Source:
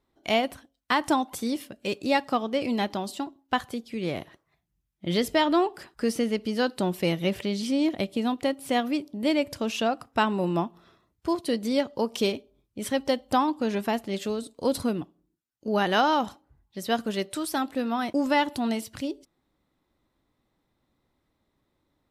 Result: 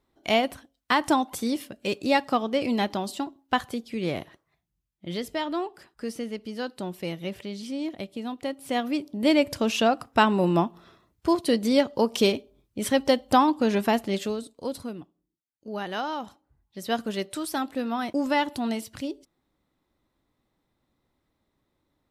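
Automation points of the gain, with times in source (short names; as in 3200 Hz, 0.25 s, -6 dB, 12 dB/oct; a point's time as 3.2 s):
4.12 s +1.5 dB
5.22 s -7 dB
8.27 s -7 dB
9.33 s +4 dB
14.09 s +4 dB
14.8 s -8.5 dB
16.21 s -8.5 dB
16.93 s -1 dB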